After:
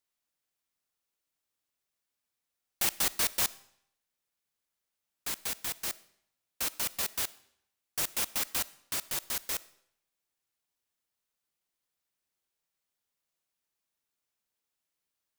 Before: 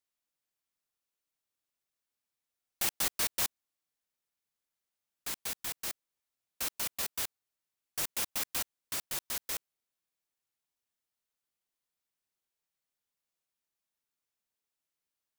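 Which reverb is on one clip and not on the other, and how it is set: algorithmic reverb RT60 0.71 s, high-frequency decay 0.95×, pre-delay 10 ms, DRR 19 dB; trim +2.5 dB

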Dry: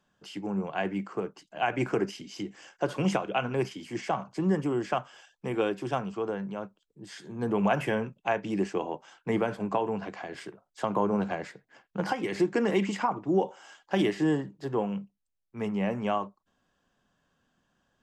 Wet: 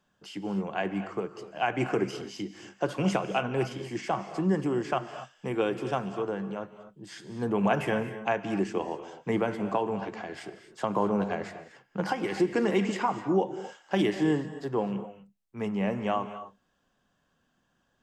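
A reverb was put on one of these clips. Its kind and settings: gated-style reverb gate 280 ms rising, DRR 10.5 dB

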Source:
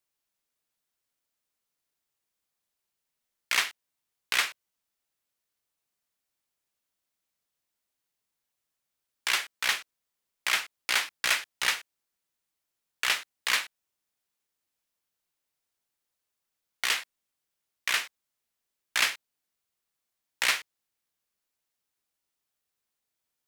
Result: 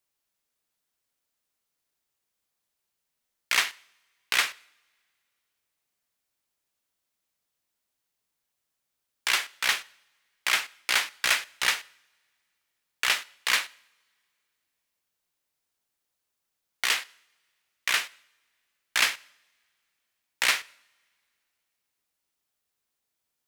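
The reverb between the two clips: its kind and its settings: two-slope reverb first 0.69 s, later 2.7 s, from -22 dB, DRR 20 dB; trim +2 dB

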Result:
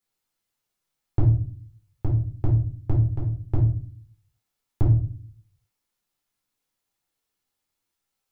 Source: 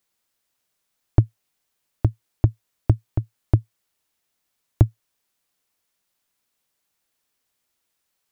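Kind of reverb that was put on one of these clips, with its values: simulated room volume 370 m³, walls furnished, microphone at 4.1 m; trim -11.5 dB

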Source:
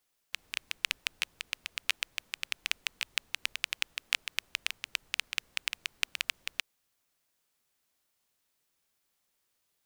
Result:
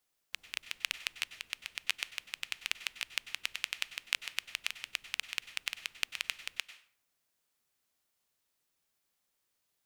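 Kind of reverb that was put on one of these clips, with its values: plate-style reverb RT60 0.53 s, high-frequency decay 0.75×, pre-delay 85 ms, DRR 12.5 dB; trim -3 dB

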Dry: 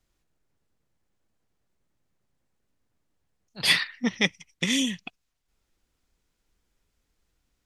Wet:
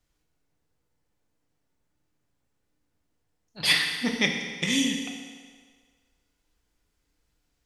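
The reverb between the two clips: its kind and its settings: FDN reverb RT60 1.7 s, low-frequency decay 0.8×, high-frequency decay 0.9×, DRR 1.5 dB; trim -1.5 dB

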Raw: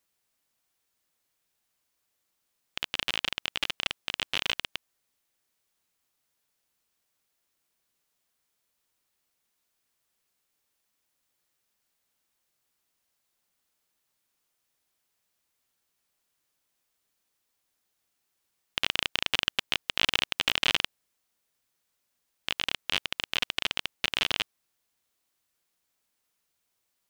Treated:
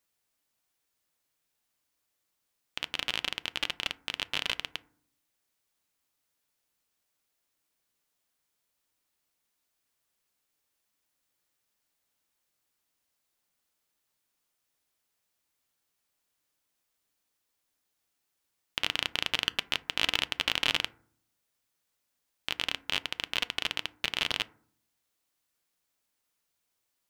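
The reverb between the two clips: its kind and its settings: FDN reverb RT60 0.54 s, low-frequency decay 1.55×, high-frequency decay 0.35×, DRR 15 dB; trim -2 dB

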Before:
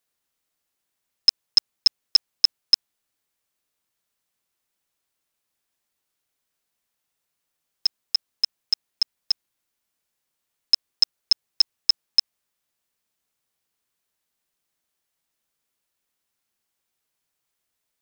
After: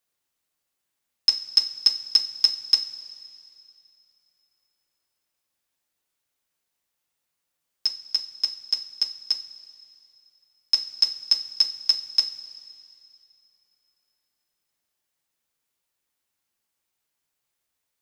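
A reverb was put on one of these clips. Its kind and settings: two-slope reverb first 0.34 s, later 2.7 s, from -15 dB, DRR 4.5 dB; trim -2 dB

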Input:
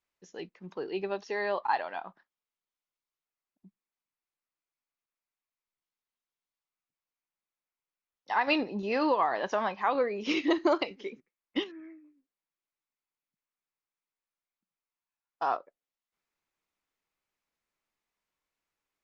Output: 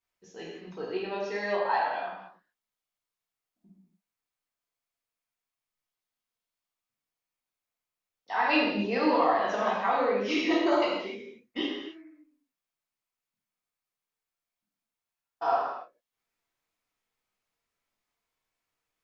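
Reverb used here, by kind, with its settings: gated-style reverb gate 330 ms falling, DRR -7 dB; trim -5 dB

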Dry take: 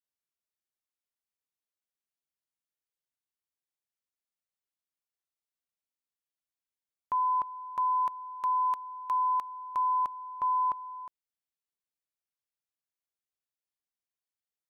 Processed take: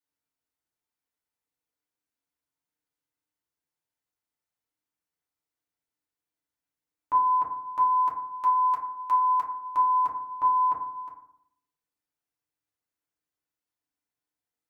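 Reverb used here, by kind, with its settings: FDN reverb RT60 0.69 s, low-frequency decay 1.3×, high-frequency decay 0.25×, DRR -4.5 dB; trim -1 dB

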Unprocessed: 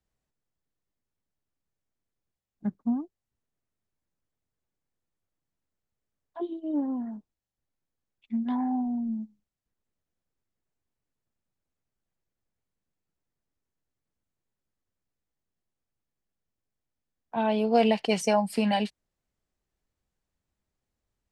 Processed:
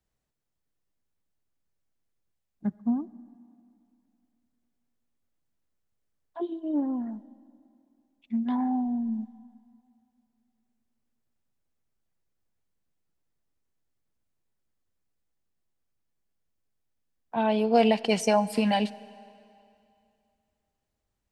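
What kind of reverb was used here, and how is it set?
algorithmic reverb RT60 2.6 s, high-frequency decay 0.95×, pre-delay 35 ms, DRR 19.5 dB; trim +1 dB

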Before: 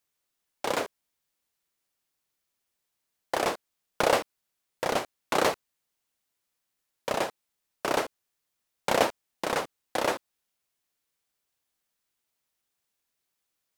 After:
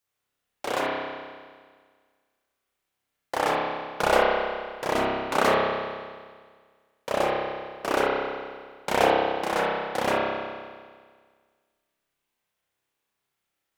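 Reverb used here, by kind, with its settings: spring tank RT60 1.7 s, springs 30 ms, chirp 65 ms, DRR -6.5 dB; trim -2.5 dB

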